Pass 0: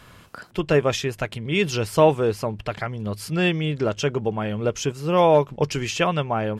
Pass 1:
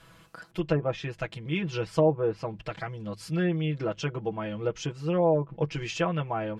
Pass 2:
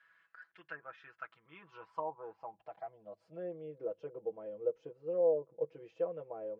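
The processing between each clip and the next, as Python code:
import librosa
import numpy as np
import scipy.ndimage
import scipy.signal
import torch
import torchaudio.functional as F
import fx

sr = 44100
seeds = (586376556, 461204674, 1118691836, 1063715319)

y1 = fx.env_lowpass_down(x, sr, base_hz=680.0, full_db=-13.0)
y1 = y1 + 0.92 * np.pad(y1, (int(6.1 * sr / 1000.0), 0))[:len(y1)]
y1 = F.gain(torch.from_numpy(y1), -9.0).numpy()
y2 = fx.filter_sweep_bandpass(y1, sr, from_hz=1700.0, to_hz=500.0, start_s=0.57, end_s=3.75, q=6.2)
y2 = F.gain(torch.from_numpy(y2), -2.0).numpy()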